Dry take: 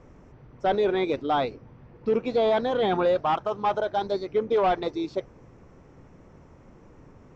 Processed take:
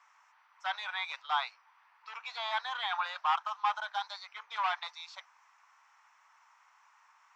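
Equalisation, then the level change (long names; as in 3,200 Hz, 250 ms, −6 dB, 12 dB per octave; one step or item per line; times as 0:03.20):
Butterworth high-pass 900 Hz 48 dB per octave
0.0 dB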